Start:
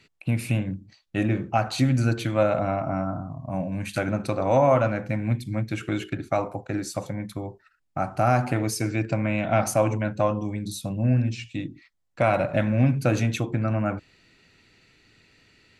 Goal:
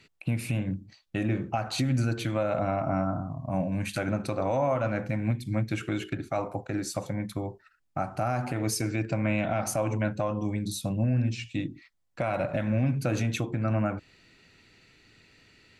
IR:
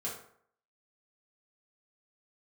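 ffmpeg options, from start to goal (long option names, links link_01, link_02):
-af "alimiter=limit=-17.5dB:level=0:latency=1:release=206"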